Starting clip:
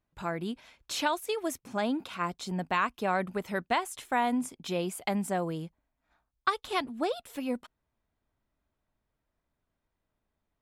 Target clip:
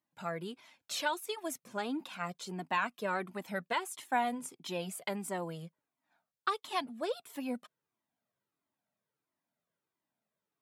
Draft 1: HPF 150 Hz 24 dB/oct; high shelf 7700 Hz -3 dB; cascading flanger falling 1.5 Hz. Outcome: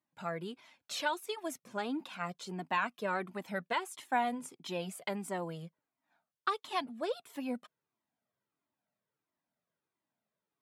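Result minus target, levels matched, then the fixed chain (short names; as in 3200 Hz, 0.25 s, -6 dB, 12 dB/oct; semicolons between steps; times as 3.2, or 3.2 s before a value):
8000 Hz band -3.0 dB
HPF 150 Hz 24 dB/oct; high shelf 7700 Hz +3.5 dB; cascading flanger falling 1.5 Hz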